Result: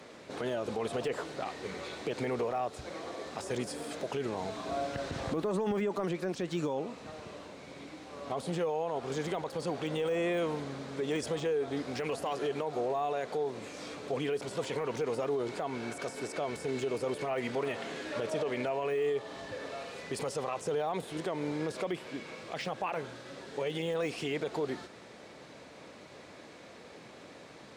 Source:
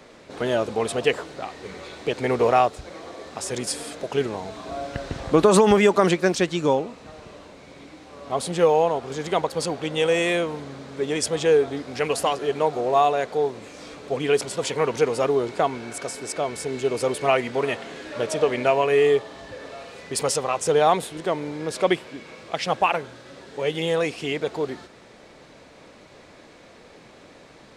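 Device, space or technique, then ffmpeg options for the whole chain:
podcast mastering chain: -af "highpass=84,deesser=0.95,acompressor=threshold=0.0631:ratio=3,alimiter=limit=0.0794:level=0:latency=1:release=29,volume=0.794" -ar 48000 -c:a libmp3lame -b:a 112k

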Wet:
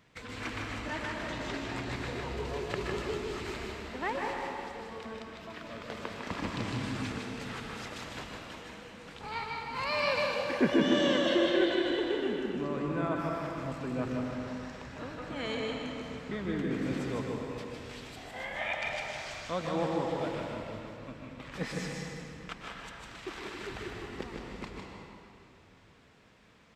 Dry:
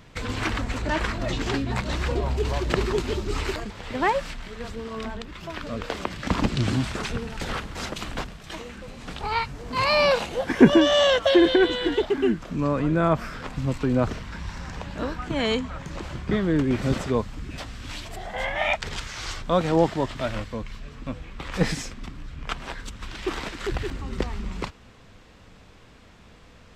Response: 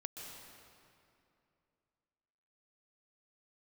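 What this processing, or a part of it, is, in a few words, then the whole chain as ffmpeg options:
PA in a hall: -filter_complex "[0:a]highpass=f=130:p=1,equalizer=f=2000:t=o:w=0.77:g=3,aecho=1:1:154:0.596[s0];[1:a]atrim=start_sample=2205[s1];[s0][s1]afir=irnorm=-1:irlink=0,volume=0.398"

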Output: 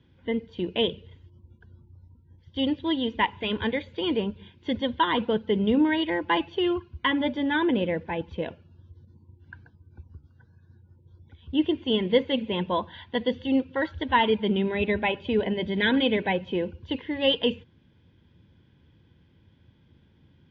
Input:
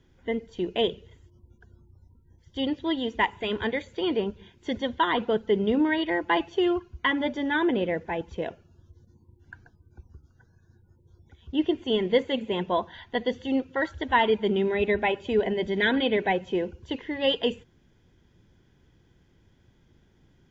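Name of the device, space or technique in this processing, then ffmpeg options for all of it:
guitar cabinet: -af "highpass=78,equalizer=f=85:t=q:w=4:g=5,equalizer=f=390:t=q:w=4:g=-7,equalizer=f=710:t=q:w=4:g=-9,equalizer=f=1300:t=q:w=4:g=-6,equalizer=f=1900:t=q:w=4:g=-5,lowpass=f=4000:w=0.5412,lowpass=f=4000:w=1.3066,volume=1.5"

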